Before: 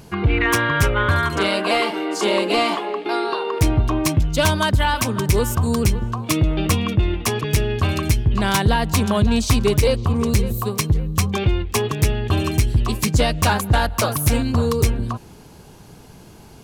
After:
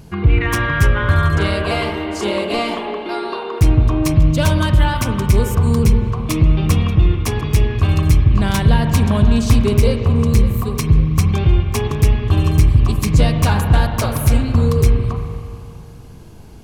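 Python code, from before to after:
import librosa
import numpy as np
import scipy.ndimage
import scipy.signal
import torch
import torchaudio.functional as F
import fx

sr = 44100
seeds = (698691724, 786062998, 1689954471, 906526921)

y = fx.low_shelf(x, sr, hz=190.0, db=10.0)
y = fx.rev_spring(y, sr, rt60_s=2.5, pass_ms=(39, 45), chirp_ms=65, drr_db=4.5)
y = y * librosa.db_to_amplitude(-3.0)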